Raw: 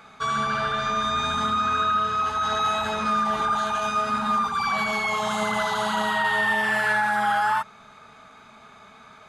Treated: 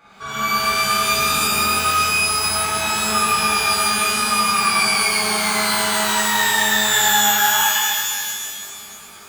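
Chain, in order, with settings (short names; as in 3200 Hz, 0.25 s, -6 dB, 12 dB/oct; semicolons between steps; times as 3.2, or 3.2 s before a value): shimmer reverb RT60 1.8 s, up +12 st, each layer -2 dB, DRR -9.5 dB; gain -7 dB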